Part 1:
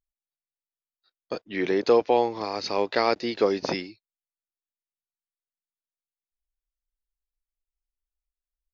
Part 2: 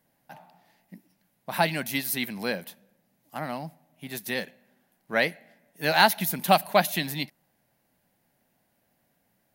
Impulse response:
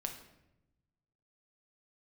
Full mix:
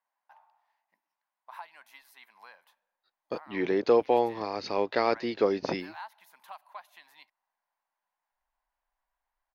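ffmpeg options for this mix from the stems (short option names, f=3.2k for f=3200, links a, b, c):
-filter_complex "[0:a]adelay=2000,volume=-2.5dB[a];[1:a]acompressor=threshold=-33dB:ratio=3,highpass=f=1k:t=q:w=4.4,volume=-15dB[b];[a][b]amix=inputs=2:normalize=0,lowpass=f=2.9k:p=1"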